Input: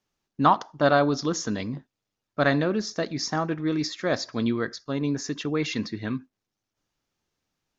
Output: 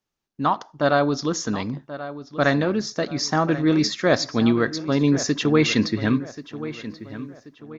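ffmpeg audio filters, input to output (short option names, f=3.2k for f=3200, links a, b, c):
-filter_complex "[0:a]dynaudnorm=f=270:g=5:m=15dB,asplit=2[a][b];[b]adelay=1083,lowpass=f=3.3k:p=1,volume=-13.5dB,asplit=2[c][d];[d]adelay=1083,lowpass=f=3.3k:p=1,volume=0.4,asplit=2[e][f];[f]adelay=1083,lowpass=f=3.3k:p=1,volume=0.4,asplit=2[g][h];[h]adelay=1083,lowpass=f=3.3k:p=1,volume=0.4[i];[a][c][e][g][i]amix=inputs=5:normalize=0,volume=-3.5dB"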